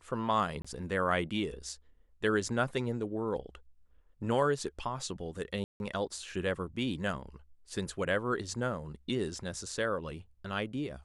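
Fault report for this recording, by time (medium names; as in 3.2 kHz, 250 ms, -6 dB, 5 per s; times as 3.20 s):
0.62–0.65 s: dropout 25 ms
5.64–5.80 s: dropout 161 ms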